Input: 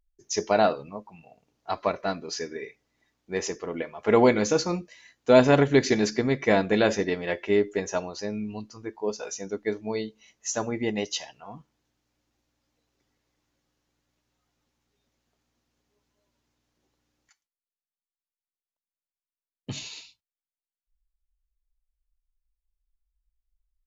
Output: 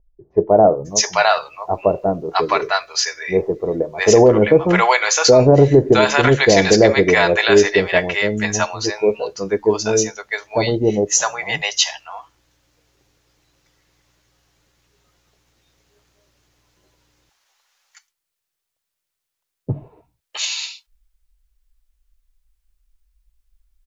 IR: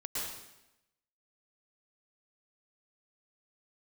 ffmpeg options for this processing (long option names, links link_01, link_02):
-filter_complex "[0:a]equalizer=frequency=240:width=2.6:gain=-11,acrossover=split=750[link_01][link_02];[link_02]adelay=660[link_03];[link_01][link_03]amix=inputs=2:normalize=0,alimiter=level_in=16.5dB:limit=-1dB:release=50:level=0:latency=1,volume=-1dB"